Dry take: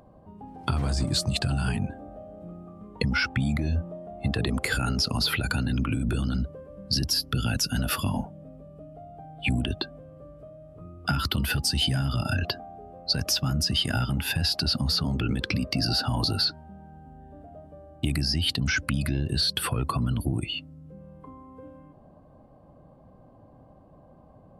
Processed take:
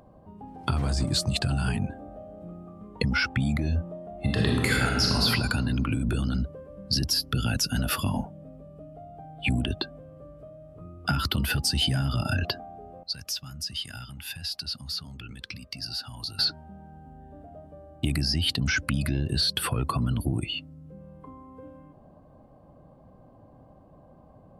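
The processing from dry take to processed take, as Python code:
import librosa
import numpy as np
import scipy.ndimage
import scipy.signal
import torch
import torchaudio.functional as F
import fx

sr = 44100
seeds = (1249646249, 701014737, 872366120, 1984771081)

y = fx.reverb_throw(x, sr, start_s=4.13, length_s=1.12, rt60_s=1.5, drr_db=-1.0)
y = fx.tone_stack(y, sr, knobs='5-5-5', at=(13.03, 16.39))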